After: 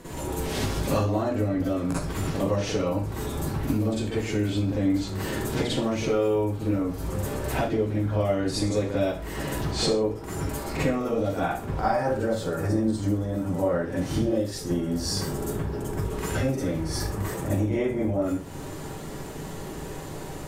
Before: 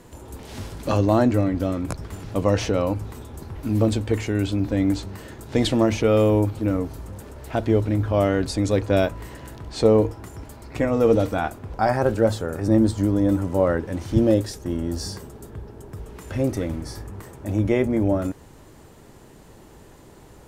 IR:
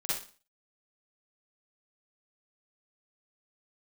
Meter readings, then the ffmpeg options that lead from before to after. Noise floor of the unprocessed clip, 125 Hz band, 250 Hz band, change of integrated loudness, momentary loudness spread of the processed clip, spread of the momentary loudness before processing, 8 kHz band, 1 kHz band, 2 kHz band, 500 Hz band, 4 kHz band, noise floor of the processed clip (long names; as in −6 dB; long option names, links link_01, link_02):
−48 dBFS, −3.5 dB, −4.0 dB, −5.0 dB, 7 LU, 20 LU, +2.5 dB, −2.0 dB, −1.5 dB, −4.5 dB, +1.0 dB, −36 dBFS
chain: -filter_complex "[0:a]acompressor=threshold=-34dB:ratio=6[link_01];[1:a]atrim=start_sample=2205,afade=type=out:start_time=0.28:duration=0.01,atrim=end_sample=12789[link_02];[link_01][link_02]afir=irnorm=-1:irlink=0,volume=6.5dB"